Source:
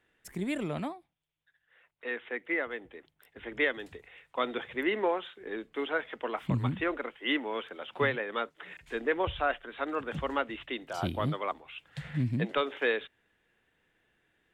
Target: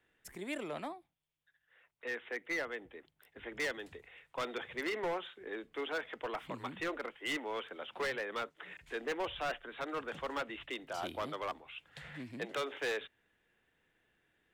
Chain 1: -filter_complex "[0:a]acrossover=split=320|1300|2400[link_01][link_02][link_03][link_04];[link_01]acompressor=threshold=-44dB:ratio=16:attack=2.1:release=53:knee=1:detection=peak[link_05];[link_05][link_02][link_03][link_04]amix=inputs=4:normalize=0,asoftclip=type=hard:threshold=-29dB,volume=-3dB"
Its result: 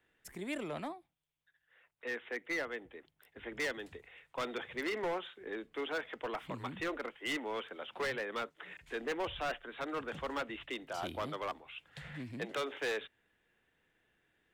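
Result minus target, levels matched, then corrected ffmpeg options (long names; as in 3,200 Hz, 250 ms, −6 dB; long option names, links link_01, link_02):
downward compressor: peak gain reduction −6 dB
-filter_complex "[0:a]acrossover=split=320|1300|2400[link_01][link_02][link_03][link_04];[link_01]acompressor=threshold=-50.5dB:ratio=16:attack=2.1:release=53:knee=1:detection=peak[link_05];[link_05][link_02][link_03][link_04]amix=inputs=4:normalize=0,asoftclip=type=hard:threshold=-29dB,volume=-3dB"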